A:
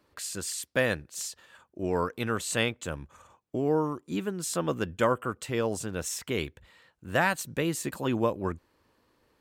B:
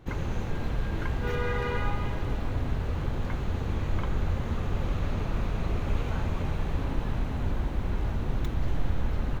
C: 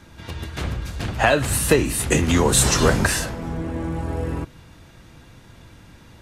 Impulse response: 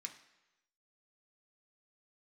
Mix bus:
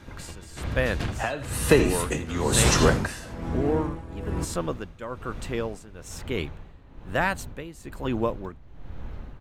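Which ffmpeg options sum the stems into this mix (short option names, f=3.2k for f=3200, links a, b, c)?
-filter_complex "[0:a]volume=1dB[a];[1:a]volume=-8.5dB[b];[2:a]volume=-0.5dB,asplit=2[c][d];[d]volume=-13.5dB,aecho=0:1:82:1[e];[a][b][c][e]amix=inputs=4:normalize=0,highshelf=f=5.7k:g=-5.5,tremolo=f=1.1:d=0.8"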